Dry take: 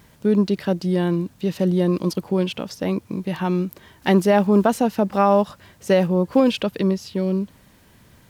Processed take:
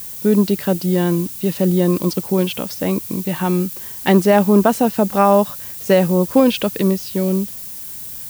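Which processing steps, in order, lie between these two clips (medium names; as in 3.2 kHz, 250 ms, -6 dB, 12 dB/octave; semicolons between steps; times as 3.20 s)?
added noise violet -35 dBFS; trim +3.5 dB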